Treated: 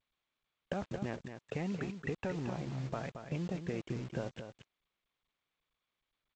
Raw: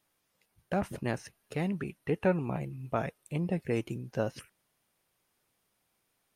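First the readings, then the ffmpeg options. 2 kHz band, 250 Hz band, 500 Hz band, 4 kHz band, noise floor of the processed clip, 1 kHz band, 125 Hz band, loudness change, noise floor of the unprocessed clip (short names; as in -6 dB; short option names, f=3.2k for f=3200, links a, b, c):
-5.0 dB, -5.5 dB, -7.5 dB, -2.0 dB, under -85 dBFS, -7.5 dB, -4.5 dB, -6.0 dB, -78 dBFS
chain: -af "afftdn=nr=15:nf=-47,alimiter=level_in=1dB:limit=-24dB:level=0:latency=1:release=171,volume=-1dB,acompressor=threshold=-44dB:ratio=4,aresample=8000,aeval=exprs='sgn(val(0))*max(abs(val(0))-0.001,0)':c=same,aresample=44100,acrusher=bits=9:mix=0:aa=0.000001,aecho=1:1:225:0.376,volume=8.5dB" -ar 16000 -c:a g722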